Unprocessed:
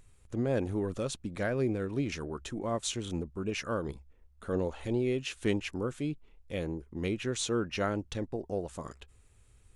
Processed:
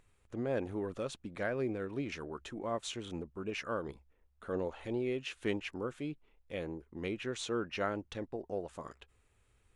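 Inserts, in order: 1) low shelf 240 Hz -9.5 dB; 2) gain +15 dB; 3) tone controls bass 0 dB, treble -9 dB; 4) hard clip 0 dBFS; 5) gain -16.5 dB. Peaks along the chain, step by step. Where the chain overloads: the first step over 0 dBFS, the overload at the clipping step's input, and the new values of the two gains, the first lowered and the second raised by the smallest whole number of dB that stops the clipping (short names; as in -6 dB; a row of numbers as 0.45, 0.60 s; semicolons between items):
-17.0, -2.0, -2.0, -2.0, -18.5 dBFS; no overload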